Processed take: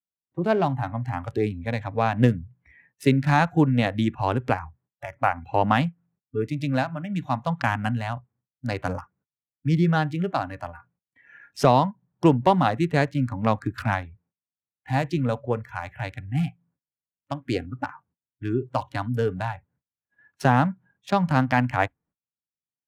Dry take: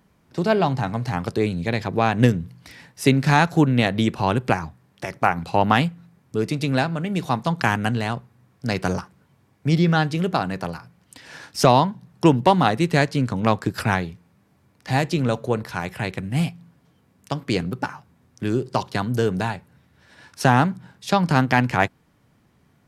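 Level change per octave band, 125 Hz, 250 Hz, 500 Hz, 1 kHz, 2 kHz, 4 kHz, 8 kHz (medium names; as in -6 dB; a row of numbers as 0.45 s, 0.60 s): -2.5 dB, -3.0 dB, -3.0 dB, -3.0 dB, -4.5 dB, -8.0 dB, -10.5 dB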